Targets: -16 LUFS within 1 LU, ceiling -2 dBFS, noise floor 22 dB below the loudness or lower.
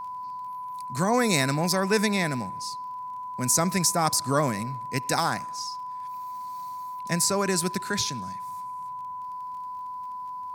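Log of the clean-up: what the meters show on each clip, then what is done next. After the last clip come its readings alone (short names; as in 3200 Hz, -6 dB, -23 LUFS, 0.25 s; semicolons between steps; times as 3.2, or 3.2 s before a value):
ticks 22/s; steady tone 1000 Hz; tone level -33 dBFS; loudness -27.5 LUFS; peak -6.0 dBFS; loudness target -16.0 LUFS
-> de-click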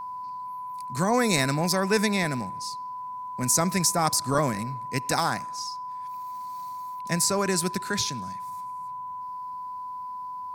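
ticks 0.28/s; steady tone 1000 Hz; tone level -33 dBFS
-> notch 1000 Hz, Q 30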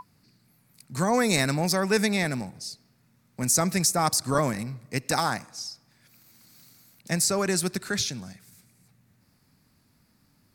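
steady tone none; loudness -25.5 LUFS; peak -6.5 dBFS; loudness target -16.0 LUFS
-> gain +9.5 dB; limiter -2 dBFS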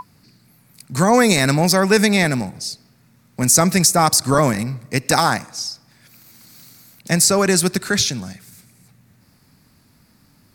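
loudness -16.5 LUFS; peak -2.0 dBFS; noise floor -56 dBFS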